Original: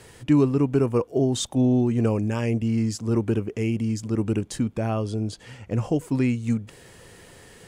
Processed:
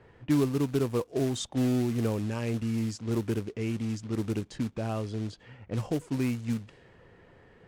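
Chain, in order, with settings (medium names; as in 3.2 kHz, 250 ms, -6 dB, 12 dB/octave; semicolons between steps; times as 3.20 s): short-mantissa float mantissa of 2-bit; level-controlled noise filter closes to 1.7 kHz, open at -18.5 dBFS; trim -6.5 dB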